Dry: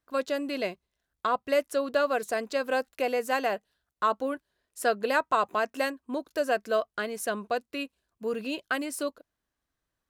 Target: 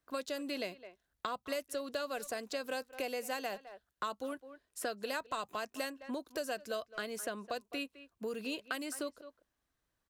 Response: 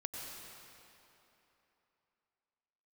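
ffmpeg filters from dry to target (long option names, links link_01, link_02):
-filter_complex "[0:a]asplit=2[link_01][link_02];[link_02]adelay=210,highpass=300,lowpass=3400,asoftclip=type=hard:threshold=-20dB,volume=-19dB[link_03];[link_01][link_03]amix=inputs=2:normalize=0,acrossover=split=160|3400[link_04][link_05][link_06];[link_04]acompressor=threshold=-60dB:ratio=4[link_07];[link_05]acompressor=threshold=-38dB:ratio=4[link_08];[link_06]acompressor=threshold=-42dB:ratio=4[link_09];[link_07][link_08][link_09]amix=inputs=3:normalize=0"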